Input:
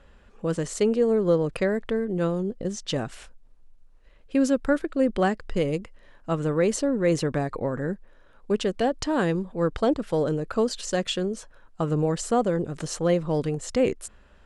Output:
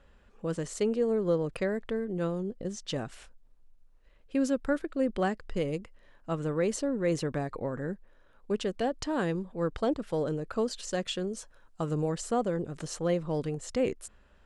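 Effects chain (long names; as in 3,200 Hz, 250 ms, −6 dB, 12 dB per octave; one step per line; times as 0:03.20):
0:11.27–0:12.10: bass and treble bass 0 dB, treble +6 dB
level −6 dB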